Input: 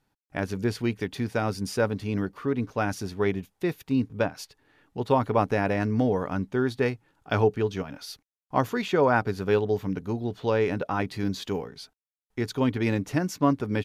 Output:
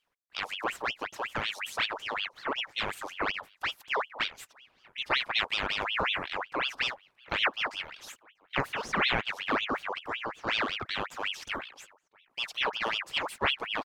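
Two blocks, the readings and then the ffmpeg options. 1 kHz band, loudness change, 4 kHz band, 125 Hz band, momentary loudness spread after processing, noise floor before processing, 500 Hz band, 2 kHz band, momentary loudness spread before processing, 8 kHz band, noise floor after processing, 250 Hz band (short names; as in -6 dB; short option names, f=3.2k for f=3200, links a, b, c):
-2.5 dB, -4.0 dB, +10.0 dB, -18.5 dB, 10 LU, under -85 dBFS, -12.5 dB, +4.0 dB, 11 LU, -4.0 dB, -72 dBFS, -16.0 dB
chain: -filter_complex "[0:a]asplit=2[a][b];[b]adelay=641.4,volume=-27dB,highshelf=f=4k:g=-14.4[c];[a][c]amix=inputs=2:normalize=0,aeval=exprs='val(0)*sin(2*PI*1900*n/s+1900*0.65/5.4*sin(2*PI*5.4*n/s))':c=same,volume=-3.5dB"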